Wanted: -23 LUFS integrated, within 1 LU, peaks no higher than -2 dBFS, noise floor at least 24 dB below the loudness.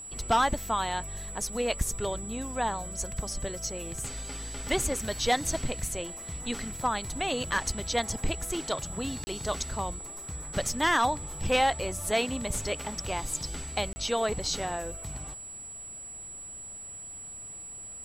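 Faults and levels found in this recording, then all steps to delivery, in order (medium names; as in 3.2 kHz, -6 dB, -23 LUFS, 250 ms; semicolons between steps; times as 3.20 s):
dropouts 2; longest dropout 30 ms; steady tone 7.8 kHz; tone level -40 dBFS; loudness -31.0 LUFS; peak level -15.0 dBFS; loudness target -23.0 LUFS
-> interpolate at 9.24/13.93 s, 30 ms; band-stop 7.8 kHz, Q 30; trim +8 dB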